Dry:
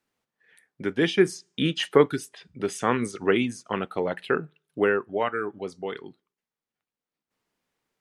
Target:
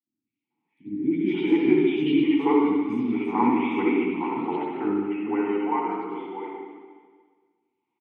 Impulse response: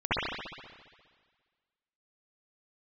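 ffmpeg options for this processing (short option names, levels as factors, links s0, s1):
-filter_complex "[0:a]asplit=3[s0][s1][s2];[s0]bandpass=f=300:t=q:w=8,volume=1[s3];[s1]bandpass=f=870:t=q:w=8,volume=0.501[s4];[s2]bandpass=f=2240:t=q:w=8,volume=0.355[s5];[s3][s4][s5]amix=inputs=3:normalize=0,acrossover=split=290|2400[s6][s7][s8];[s8]adelay=200[s9];[s7]adelay=440[s10];[s6][s10][s9]amix=inputs=3:normalize=0[s11];[1:a]atrim=start_sample=2205[s12];[s11][s12]afir=irnorm=-1:irlink=0,volume=1.26"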